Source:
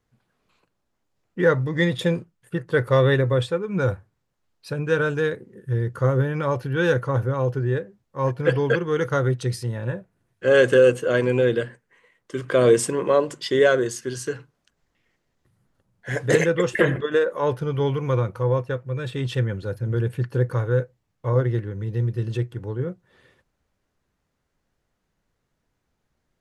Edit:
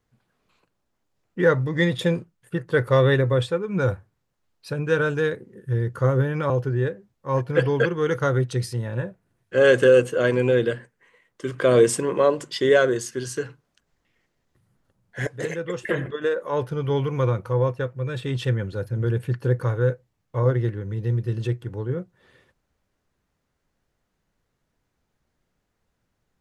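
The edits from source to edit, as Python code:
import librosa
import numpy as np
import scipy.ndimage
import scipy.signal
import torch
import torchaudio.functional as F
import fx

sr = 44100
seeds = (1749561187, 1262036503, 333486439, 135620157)

y = fx.edit(x, sr, fx.cut(start_s=6.5, length_s=0.9),
    fx.fade_in_from(start_s=16.17, length_s=1.8, floor_db=-13.5), tone=tone)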